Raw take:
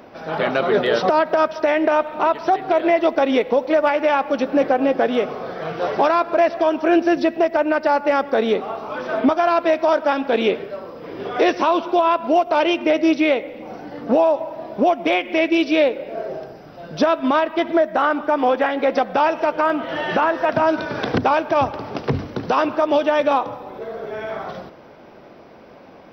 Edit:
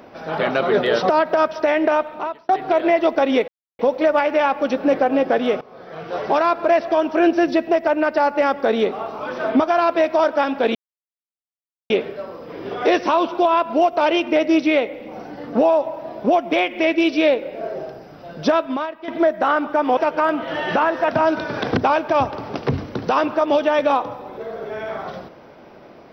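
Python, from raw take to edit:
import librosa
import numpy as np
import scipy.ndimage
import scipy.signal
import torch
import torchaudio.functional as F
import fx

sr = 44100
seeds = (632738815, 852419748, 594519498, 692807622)

y = fx.edit(x, sr, fx.fade_out_span(start_s=1.91, length_s=0.58),
    fx.insert_silence(at_s=3.48, length_s=0.31),
    fx.fade_in_from(start_s=5.3, length_s=0.87, floor_db=-19.0),
    fx.insert_silence(at_s=10.44, length_s=1.15),
    fx.fade_out_to(start_s=17.1, length_s=0.52, curve='qua', floor_db=-13.5),
    fx.cut(start_s=18.51, length_s=0.87), tone=tone)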